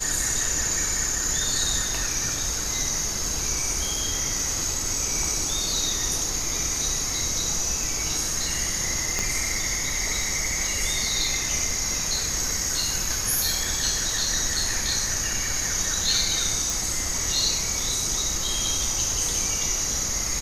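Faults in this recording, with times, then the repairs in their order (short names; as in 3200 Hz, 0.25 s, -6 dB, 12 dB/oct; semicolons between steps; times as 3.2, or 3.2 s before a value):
9.19 pop -10 dBFS
16.7 pop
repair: de-click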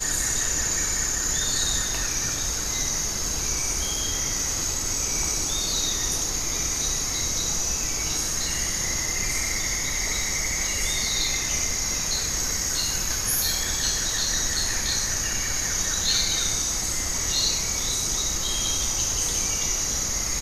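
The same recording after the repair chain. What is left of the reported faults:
9.19 pop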